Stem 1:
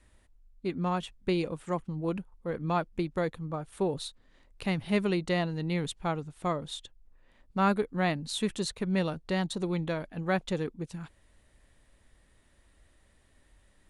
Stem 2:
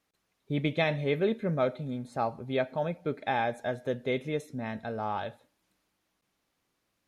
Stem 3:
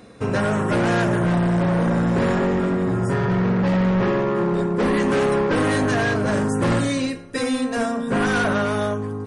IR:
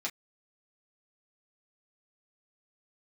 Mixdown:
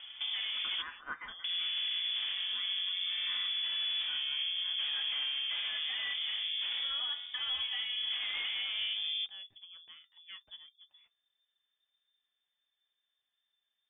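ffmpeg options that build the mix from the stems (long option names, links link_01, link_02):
-filter_complex "[0:a]flanger=delay=4.1:depth=6.5:regen=64:speed=0.27:shape=sinusoidal,volume=-18dB,asplit=2[link_01][link_02];[link_02]volume=-14.5dB[link_03];[1:a]highpass=frequency=1400:width=0.5412,highpass=frequency=1400:width=1.3066,volume=0.5dB,asplit=2[link_04][link_05];[link_05]volume=-18dB[link_06];[2:a]bandreject=frequency=60:width_type=h:width=6,bandreject=frequency=120:width_type=h:width=6,bandreject=frequency=180:width_type=h:width=6,volume=-2.5dB,asplit=3[link_07][link_08][link_09];[link_07]atrim=end=0.82,asetpts=PTS-STARTPTS,afade=type=out:start_time=0.816:duration=0.004:curve=hsin[link_10];[link_08]atrim=start=0.82:end=1.44,asetpts=PTS-STARTPTS,volume=0[link_11];[link_09]atrim=start=1.44,asetpts=PTS-STARTPTS,afade=type=in:duration=0.004:curve=hsin[link_12];[link_10][link_11][link_12]concat=n=3:v=0:a=1,asplit=2[link_13][link_14];[link_14]volume=-23.5dB[link_15];[link_04][link_13]amix=inputs=2:normalize=0,lowpass=frequency=2400:poles=1,acompressor=threshold=-29dB:ratio=6,volume=0dB[link_16];[3:a]atrim=start_sample=2205[link_17];[link_03][link_06][link_15]amix=inputs=3:normalize=0[link_18];[link_18][link_17]afir=irnorm=-1:irlink=0[link_19];[link_01][link_16][link_19]amix=inputs=3:normalize=0,lowpass=frequency=3100:width_type=q:width=0.5098,lowpass=frequency=3100:width_type=q:width=0.6013,lowpass=frequency=3100:width_type=q:width=0.9,lowpass=frequency=3100:width_type=q:width=2.563,afreqshift=-3600,alimiter=level_in=3dB:limit=-24dB:level=0:latency=1:release=291,volume=-3dB"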